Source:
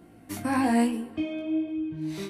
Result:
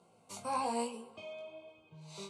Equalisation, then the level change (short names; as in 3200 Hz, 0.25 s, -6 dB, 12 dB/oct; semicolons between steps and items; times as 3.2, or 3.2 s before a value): speaker cabinet 230–8200 Hz, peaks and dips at 250 Hz -5 dB, 700 Hz -10 dB, 1500 Hz -5 dB, 3300 Hz -5 dB, 5400 Hz -6 dB; low shelf 340 Hz -4.5 dB; fixed phaser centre 750 Hz, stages 4; +1.0 dB